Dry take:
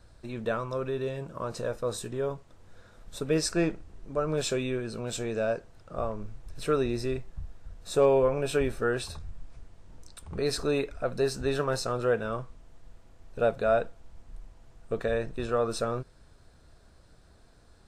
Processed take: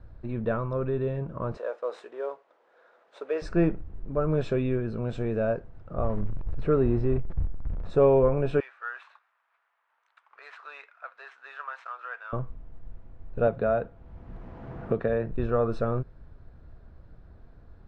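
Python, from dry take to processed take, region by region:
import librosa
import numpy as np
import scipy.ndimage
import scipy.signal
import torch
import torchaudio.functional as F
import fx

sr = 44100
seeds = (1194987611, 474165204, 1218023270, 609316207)

y = fx.chain(x, sr, fx.cvsd(bps=64000),
    fx.highpass(hz=470.0, slope=24), at=(1.57, 3.42))
y = fx.chain(y, sr, fx.zero_step(step_db=-37.0),
    fx.high_shelf(hz=2700.0, db=-11.0), at=(6.04, 7.9))
y = fx.chain(y, sr, fx.median_filter(points=9),
    fx.highpass(hz=1100.0, slope=24), at=(8.6, 12.33))
y = fx.chain(y, sr, fx.highpass(hz=98.0, slope=6),
    fx.high_shelf(hz=6800.0, db=-8.5),
    fx.band_squash(depth_pct=70), at=(13.47, 15.29))
y = scipy.signal.sosfilt(scipy.signal.butter(2, 1900.0, 'lowpass', fs=sr, output='sos'), y)
y = fx.low_shelf(y, sr, hz=250.0, db=9.0)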